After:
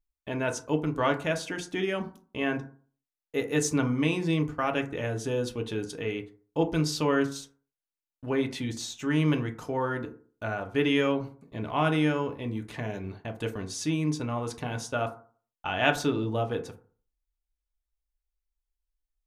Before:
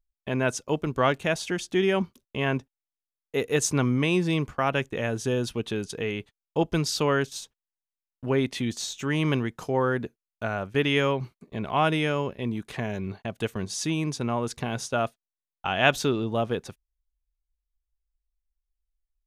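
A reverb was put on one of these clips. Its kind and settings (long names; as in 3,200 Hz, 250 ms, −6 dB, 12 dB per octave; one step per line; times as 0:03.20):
feedback delay network reverb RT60 0.44 s, low-frequency decay 1×, high-frequency decay 0.4×, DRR 4 dB
level −4.5 dB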